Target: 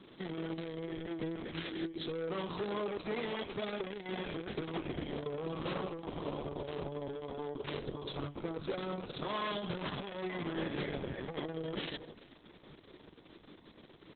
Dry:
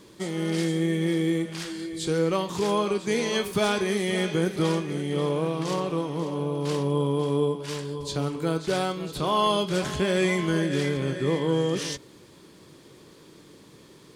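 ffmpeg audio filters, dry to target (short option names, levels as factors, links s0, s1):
-filter_complex "[0:a]aeval=exprs='(tanh(20*val(0)+0.5)-tanh(0.5))/20':c=same,highpass=f=120:w=0.5412,highpass=f=120:w=1.3066,asettb=1/sr,asplit=3[s0][s1][s2];[s0]atrim=end=6.104[s3];[s1]atrim=start=6.1:end=6.59,asetpts=PTS-STARTPTS,afade=t=in:d=0.004:c=qsin,afade=t=out:st=0.486:d=0.004:c=qsin,equalizer=f=10000:t=o:w=2.5:g=7[s4];[s2]atrim=start=6.586[s5];[s3][s4]acrossfade=d=0.004:c1=hsin:c2=qsin[s6];[s6][s5]acrossfade=d=0.004:c1=qsin:c2=hsin,asplit=2[s7][s8];[s8]adelay=390.7,volume=0.126,highshelf=f=4000:g=-8.79[s9];[s7][s9]amix=inputs=2:normalize=0,alimiter=level_in=1.26:limit=0.0631:level=0:latency=1:release=26,volume=0.794,volume=0.891" -ar 48000 -c:a libopus -b:a 6k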